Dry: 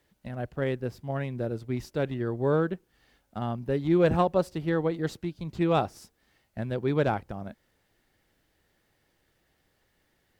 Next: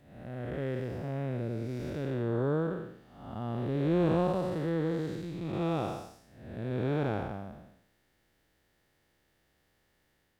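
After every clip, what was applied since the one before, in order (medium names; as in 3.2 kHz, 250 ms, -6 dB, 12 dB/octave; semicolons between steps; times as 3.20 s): spectral blur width 349 ms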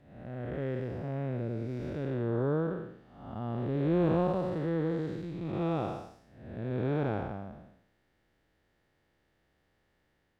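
low-pass 2.6 kHz 6 dB/octave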